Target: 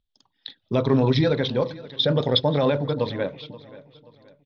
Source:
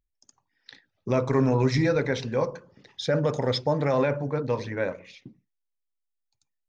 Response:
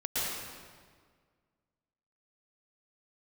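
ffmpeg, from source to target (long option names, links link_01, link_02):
-filter_complex "[0:a]firequalizer=gain_entry='entry(110,0);entry(170,3);entry(330,1);entry(830,0);entry(1500,-2);entry(2300,-3);entry(3400,14);entry(7200,-22)':delay=0.05:min_phase=1,atempo=1.5,asplit=2[link_01][link_02];[link_02]aecho=0:1:529|1058|1587:0.112|0.0426|0.0162[link_03];[link_01][link_03]amix=inputs=2:normalize=0,volume=2dB"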